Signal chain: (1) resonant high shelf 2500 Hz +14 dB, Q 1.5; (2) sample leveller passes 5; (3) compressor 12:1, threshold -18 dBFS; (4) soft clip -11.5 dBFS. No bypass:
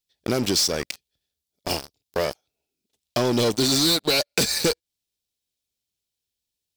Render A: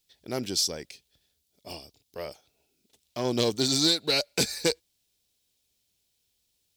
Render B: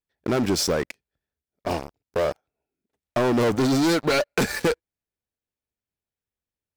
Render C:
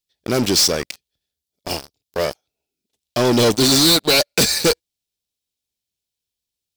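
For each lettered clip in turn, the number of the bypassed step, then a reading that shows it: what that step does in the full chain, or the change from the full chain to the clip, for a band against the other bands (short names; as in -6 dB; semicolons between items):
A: 2, 4 kHz band +2.0 dB; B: 1, 4 kHz band -10.5 dB; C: 3, mean gain reduction 7.5 dB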